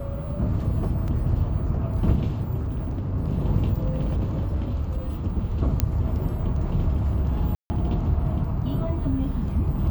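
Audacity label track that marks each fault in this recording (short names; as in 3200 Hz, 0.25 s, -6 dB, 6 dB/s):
1.080000	1.080000	gap 3.5 ms
2.610000	3.120000	clipped -24 dBFS
3.940000	5.080000	clipped -20.5 dBFS
5.800000	5.800000	pop -6 dBFS
7.550000	7.700000	gap 0.15 s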